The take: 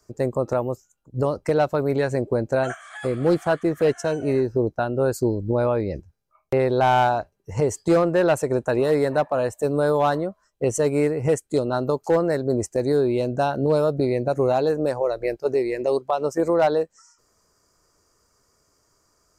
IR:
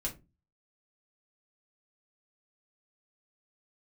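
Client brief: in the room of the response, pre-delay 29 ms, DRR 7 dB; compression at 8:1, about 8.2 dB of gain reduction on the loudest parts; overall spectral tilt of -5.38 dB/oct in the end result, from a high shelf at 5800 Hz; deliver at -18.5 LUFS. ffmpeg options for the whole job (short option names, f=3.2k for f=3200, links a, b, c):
-filter_complex "[0:a]highshelf=f=5.8k:g=8.5,acompressor=threshold=-23dB:ratio=8,asplit=2[a][b];[1:a]atrim=start_sample=2205,adelay=29[c];[b][c]afir=irnorm=-1:irlink=0,volume=-8dB[d];[a][d]amix=inputs=2:normalize=0,volume=8.5dB"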